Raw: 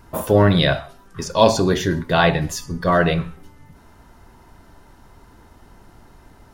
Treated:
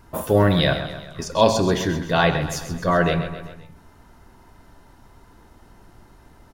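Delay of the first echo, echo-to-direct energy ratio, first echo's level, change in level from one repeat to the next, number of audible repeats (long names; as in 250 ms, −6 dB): 131 ms, −9.5 dB, −11.0 dB, −5.5 dB, 4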